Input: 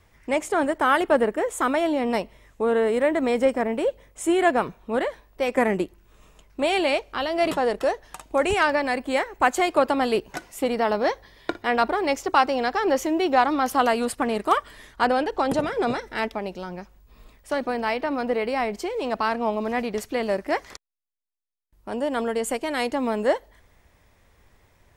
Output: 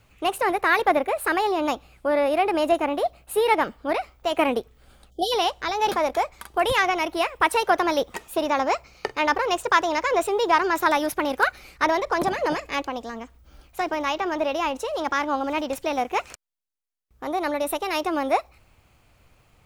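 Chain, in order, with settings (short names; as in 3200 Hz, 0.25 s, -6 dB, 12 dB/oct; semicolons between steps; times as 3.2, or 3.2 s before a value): wide varispeed 1.27×; spectral delete 5.1–5.32, 790–3000 Hz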